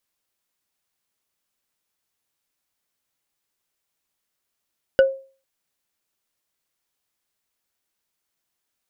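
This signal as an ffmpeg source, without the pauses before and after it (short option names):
-f lavfi -i "aevalsrc='0.422*pow(10,-3*t/0.38)*sin(2*PI*537*t)+0.158*pow(10,-3*t/0.113)*sin(2*PI*1480.5*t)+0.0596*pow(10,-3*t/0.05)*sin(2*PI*2901.9*t)+0.0224*pow(10,-3*t/0.027)*sin(2*PI*4797*t)+0.00841*pow(10,-3*t/0.017)*sin(2*PI*7163.6*t)':d=0.45:s=44100"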